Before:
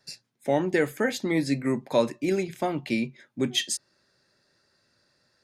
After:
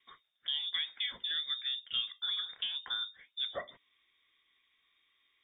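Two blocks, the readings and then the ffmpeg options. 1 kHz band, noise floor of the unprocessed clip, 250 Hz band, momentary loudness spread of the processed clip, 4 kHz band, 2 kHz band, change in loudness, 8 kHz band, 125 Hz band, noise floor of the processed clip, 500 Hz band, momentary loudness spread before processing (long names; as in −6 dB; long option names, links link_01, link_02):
−17.5 dB, −70 dBFS, below −40 dB, 6 LU, +2.5 dB, −11.0 dB, −7.5 dB, below −40 dB, below −30 dB, −76 dBFS, −25.0 dB, 7 LU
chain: -af "lowpass=frequency=3200:width_type=q:width=0.5098,lowpass=frequency=3200:width_type=q:width=0.6013,lowpass=frequency=3200:width_type=q:width=0.9,lowpass=frequency=3200:width_type=q:width=2.563,afreqshift=-3800,acompressor=threshold=-37dB:ratio=2,volume=-2.5dB"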